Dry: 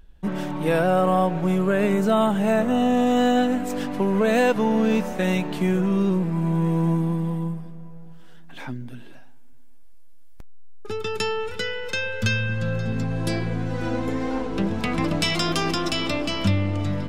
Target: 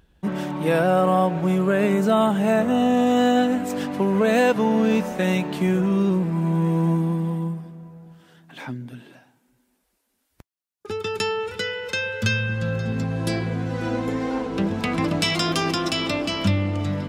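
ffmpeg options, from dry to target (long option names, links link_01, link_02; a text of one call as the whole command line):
ffmpeg -i in.wav -af "highpass=73,volume=1dB" out.wav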